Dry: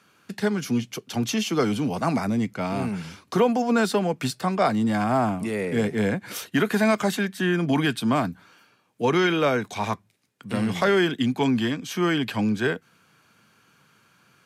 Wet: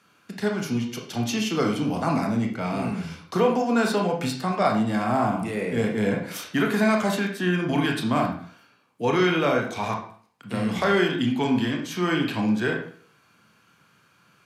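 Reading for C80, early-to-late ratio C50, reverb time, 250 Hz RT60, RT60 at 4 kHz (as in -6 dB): 10.5 dB, 6.0 dB, 0.50 s, 0.50 s, 0.40 s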